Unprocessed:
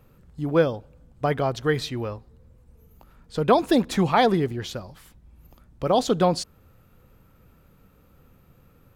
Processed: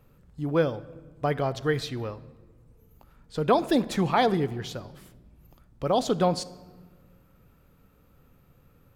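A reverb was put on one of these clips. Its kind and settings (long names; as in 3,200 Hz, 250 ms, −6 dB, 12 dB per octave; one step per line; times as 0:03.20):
rectangular room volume 1,300 cubic metres, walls mixed, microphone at 0.3 metres
level −3.5 dB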